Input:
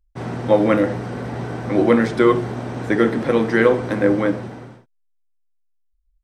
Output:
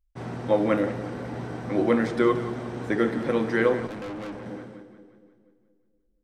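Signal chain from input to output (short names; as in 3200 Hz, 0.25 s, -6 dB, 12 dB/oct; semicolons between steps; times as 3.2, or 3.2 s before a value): split-band echo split 490 Hz, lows 0.237 s, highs 0.177 s, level -13.5 dB; 3.87–4.46 tube stage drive 26 dB, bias 0.65; gain -7 dB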